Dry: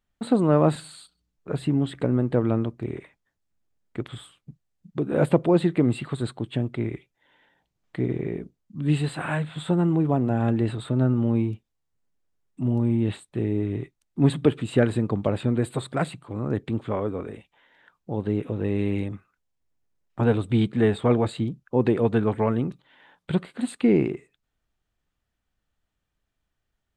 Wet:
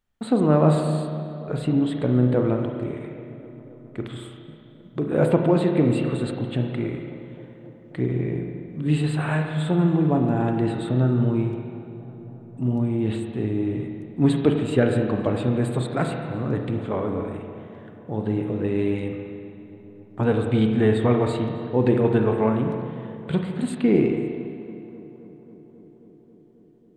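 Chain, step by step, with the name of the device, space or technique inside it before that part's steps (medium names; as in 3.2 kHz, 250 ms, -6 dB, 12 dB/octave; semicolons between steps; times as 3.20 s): dub delay into a spring reverb (filtered feedback delay 270 ms, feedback 80%, low-pass 2.6 kHz, level -19 dB; spring tank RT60 2.1 s, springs 32/46 ms, chirp 40 ms, DRR 3 dB)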